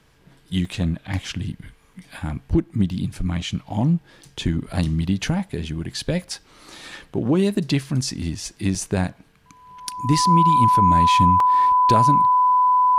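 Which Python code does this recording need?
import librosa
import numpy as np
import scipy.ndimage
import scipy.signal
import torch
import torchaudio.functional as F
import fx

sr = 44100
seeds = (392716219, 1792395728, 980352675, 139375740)

y = fx.notch(x, sr, hz=1000.0, q=30.0)
y = fx.fix_interpolate(y, sr, at_s=(0.65, 1.94, 7.55, 8.75, 11.4), length_ms=2.8)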